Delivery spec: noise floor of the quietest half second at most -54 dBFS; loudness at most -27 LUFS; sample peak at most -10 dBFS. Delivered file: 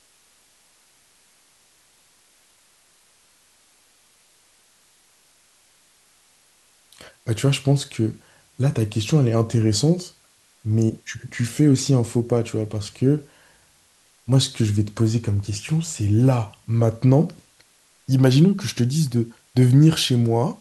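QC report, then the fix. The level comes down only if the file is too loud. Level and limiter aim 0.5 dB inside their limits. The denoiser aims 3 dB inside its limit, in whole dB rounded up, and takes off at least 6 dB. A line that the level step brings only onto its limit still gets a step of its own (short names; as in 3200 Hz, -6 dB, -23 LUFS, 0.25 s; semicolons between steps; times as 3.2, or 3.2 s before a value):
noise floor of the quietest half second -58 dBFS: OK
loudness -20.5 LUFS: fail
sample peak -3.5 dBFS: fail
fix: gain -7 dB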